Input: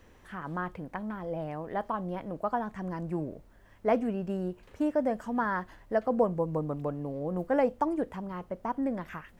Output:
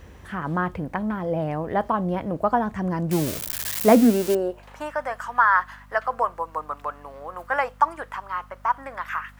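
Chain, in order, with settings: 3.11–4.35 switching spikes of -24.5 dBFS; high-pass sweep 73 Hz -> 1200 Hz, 3.45–4.92; hum 50 Hz, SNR 25 dB; gain +9 dB

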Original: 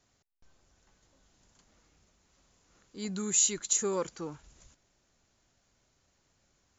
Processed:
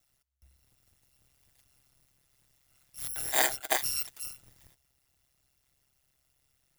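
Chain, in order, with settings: FFT order left unsorted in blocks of 256 samples; 3.09–3.77 small resonant body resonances 430/700/1500 Hz, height 17 dB; ring modulator 67 Hz; gain +1.5 dB

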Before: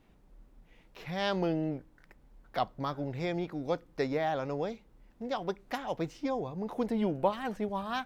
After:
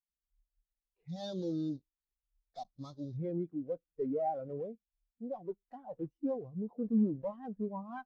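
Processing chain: block floating point 3-bit; 1.08–3.17 band shelf 4900 Hz +13 dB 1.2 oct; tube stage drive 32 dB, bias 0.4; spectral expander 2.5:1; gain +8 dB

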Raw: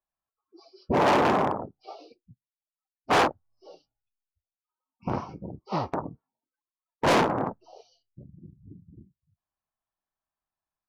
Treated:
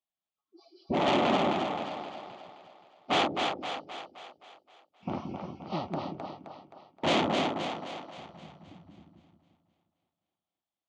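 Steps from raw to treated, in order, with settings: speaker cabinet 110–7000 Hz, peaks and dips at 120 Hz -10 dB, 460 Hz -9 dB, 1000 Hz -8 dB, 1600 Hz -10 dB, 3300 Hz +7 dB, 5300 Hz -8 dB; on a send: split-band echo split 430 Hz, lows 0.176 s, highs 0.262 s, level -4 dB; on the sum: gain -2 dB

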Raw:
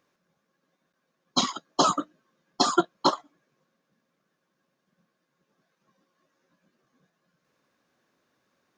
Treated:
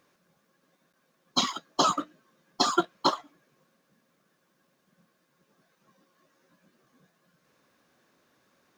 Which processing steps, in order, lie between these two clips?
G.711 law mismatch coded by mu; dynamic EQ 2400 Hz, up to +5 dB, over -41 dBFS, Q 0.76; gain -4 dB

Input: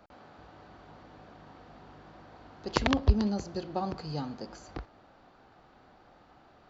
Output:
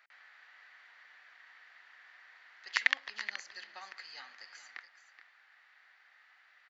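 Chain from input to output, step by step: resonant high-pass 1900 Hz, resonance Q 6; echo 0.425 s -12 dB; gain -4 dB

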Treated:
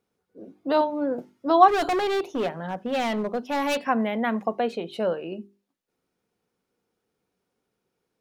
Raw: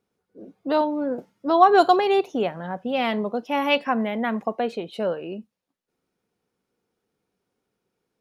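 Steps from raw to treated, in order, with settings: 1.68–3.86 hard clip -21.5 dBFS, distortion -8 dB; notches 50/100/150/200/250/300/350/400 Hz

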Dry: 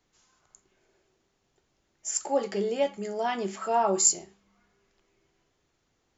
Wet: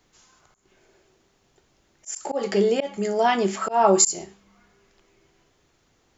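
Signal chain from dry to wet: auto swell 0.171 s; gain +9 dB

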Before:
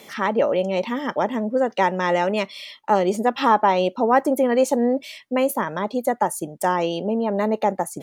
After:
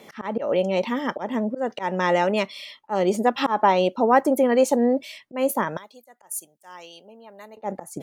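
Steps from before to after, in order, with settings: 5.77–7.57 pre-emphasis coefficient 0.97; auto swell 0.147 s; mismatched tape noise reduction decoder only

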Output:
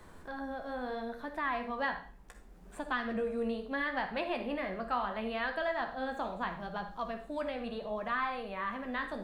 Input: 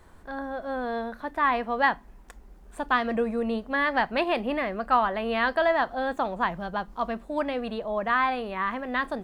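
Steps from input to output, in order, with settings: tilt -1.5 dB/oct; flange 0.72 Hz, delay 9.3 ms, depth 8.5 ms, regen +43%; high shelf 2200 Hz +8.5 dB; reverb RT60 0.40 s, pre-delay 45 ms, DRR 8 dB; three-band squash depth 40%; gain -8 dB

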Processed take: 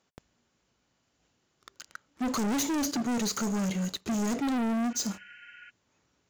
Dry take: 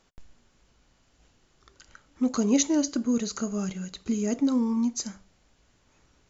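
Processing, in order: HPF 100 Hz 12 dB/oct; sample leveller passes 3; spectral repair 4.92–5.67, 1400–3100 Hz before; soft clip -25.5 dBFS, distortion -9 dB; gain -1.5 dB

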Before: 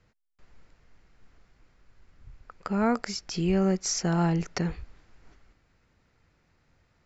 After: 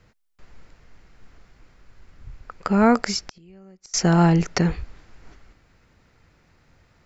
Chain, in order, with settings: 3.22–3.94 flipped gate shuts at -23 dBFS, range -32 dB; gain +8.5 dB

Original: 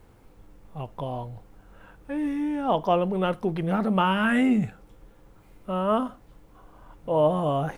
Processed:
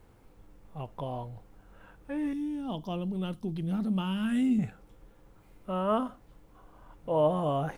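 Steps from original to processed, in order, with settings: 2.33–4.59 band shelf 980 Hz -13 dB 2.9 oct; gain -4 dB

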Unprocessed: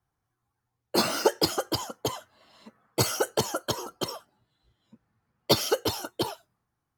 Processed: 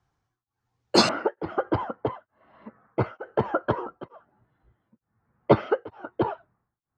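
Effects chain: LPF 7000 Hz 24 dB/oct, from 1.09 s 1900 Hz; beating tremolo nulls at 1.1 Hz; gain +6.5 dB

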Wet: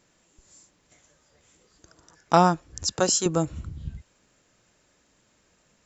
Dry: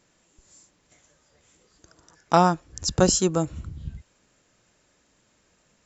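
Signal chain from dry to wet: 2.86–3.26 HPF 560 Hz 6 dB/oct

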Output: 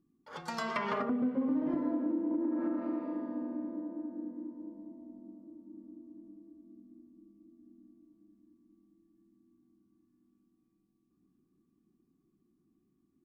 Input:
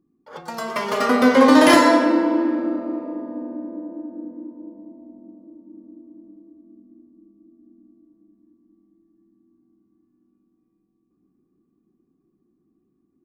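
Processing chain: bell 520 Hz -7.5 dB 1.6 oct; treble ducked by the level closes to 370 Hz, closed at -19 dBFS; compressor 5:1, threshold -26 dBFS, peak gain reduction 11 dB; on a send: passive tone stack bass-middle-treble 5-5-5 + reverb RT60 4.0 s, pre-delay 84 ms, DRR 22.5 dB; on the sum: gain -3 dB

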